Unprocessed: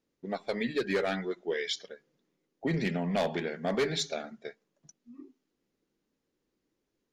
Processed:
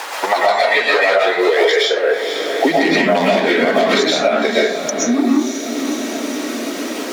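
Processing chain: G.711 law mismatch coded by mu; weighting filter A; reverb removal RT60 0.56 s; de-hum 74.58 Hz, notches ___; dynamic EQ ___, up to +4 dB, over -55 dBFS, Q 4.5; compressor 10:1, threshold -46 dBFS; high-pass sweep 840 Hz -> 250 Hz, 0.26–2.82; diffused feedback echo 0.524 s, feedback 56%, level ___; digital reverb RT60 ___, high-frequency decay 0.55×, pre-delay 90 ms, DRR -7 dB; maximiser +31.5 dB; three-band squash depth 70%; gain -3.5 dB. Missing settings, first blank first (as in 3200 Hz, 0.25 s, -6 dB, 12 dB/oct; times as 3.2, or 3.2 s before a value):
3, 970 Hz, -15 dB, 0.53 s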